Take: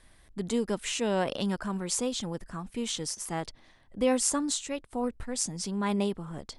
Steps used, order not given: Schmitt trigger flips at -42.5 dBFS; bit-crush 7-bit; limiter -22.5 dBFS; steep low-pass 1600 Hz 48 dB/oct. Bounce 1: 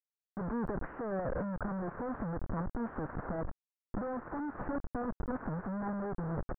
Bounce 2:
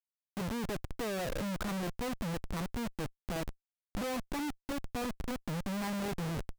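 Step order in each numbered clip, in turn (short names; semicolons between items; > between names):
limiter > Schmitt trigger > bit-crush > steep low-pass; limiter > bit-crush > steep low-pass > Schmitt trigger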